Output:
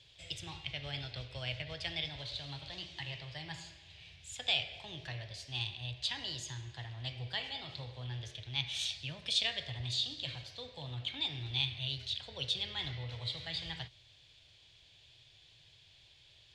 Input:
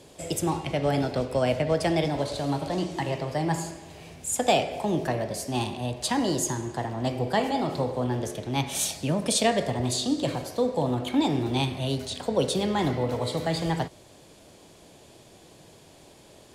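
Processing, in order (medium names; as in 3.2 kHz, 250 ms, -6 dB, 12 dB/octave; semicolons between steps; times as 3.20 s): FFT filter 120 Hz 0 dB, 210 Hz -22 dB, 1.2 kHz -11 dB, 1.7 kHz -2 dB, 3.5 kHz +10 dB, 12 kHz -23 dB; trim -8.5 dB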